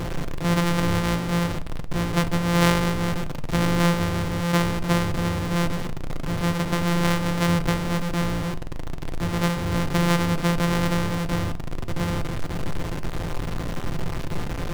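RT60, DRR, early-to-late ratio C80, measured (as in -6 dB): 0.40 s, 10.0 dB, 23.5 dB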